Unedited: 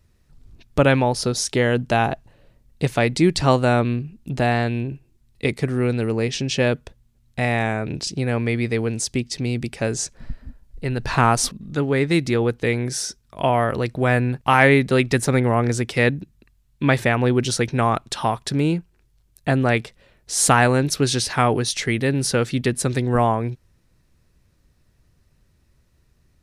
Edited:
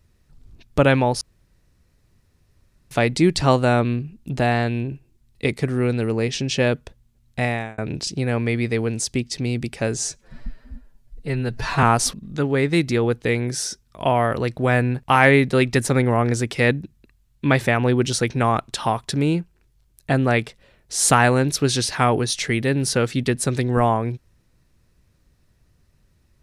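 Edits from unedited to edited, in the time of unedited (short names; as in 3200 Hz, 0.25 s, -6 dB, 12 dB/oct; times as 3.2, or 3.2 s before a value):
1.21–2.91 room tone
7.43–7.78 fade out
9.97–11.21 stretch 1.5×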